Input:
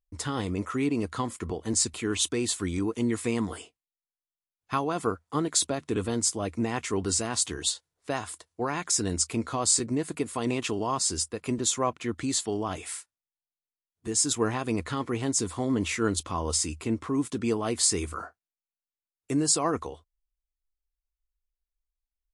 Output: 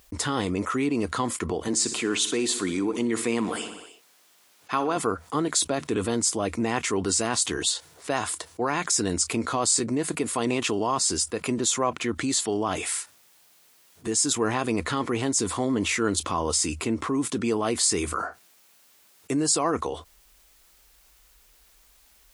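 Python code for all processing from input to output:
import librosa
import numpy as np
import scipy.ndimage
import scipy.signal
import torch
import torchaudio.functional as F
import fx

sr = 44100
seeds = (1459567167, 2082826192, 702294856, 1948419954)

y = fx.chain(x, sr, fx.highpass(hz=170.0, slope=12),
    fx.high_shelf(hz=9600.0, db=-6.0),
    fx.echo_feedback(ms=61, feedback_pct=57, wet_db=-16.0), at=(1.68, 4.97))
y = fx.highpass(y, sr, hz=190.0, slope=6)
y = fx.env_flatten(y, sr, amount_pct=50)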